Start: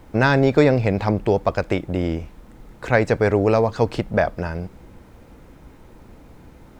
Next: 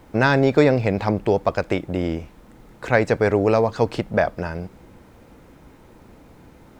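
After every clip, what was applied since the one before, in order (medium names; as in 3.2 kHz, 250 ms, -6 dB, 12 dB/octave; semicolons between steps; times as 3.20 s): bass shelf 71 Hz -8.5 dB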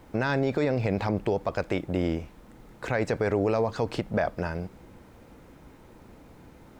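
peak limiter -13 dBFS, peak gain reduction 10.5 dB; trim -3 dB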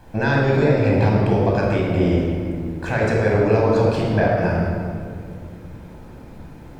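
reverberation RT60 2.1 s, pre-delay 19 ms, DRR -3.5 dB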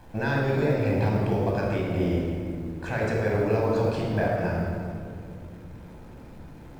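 companding laws mixed up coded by mu; trim -7.5 dB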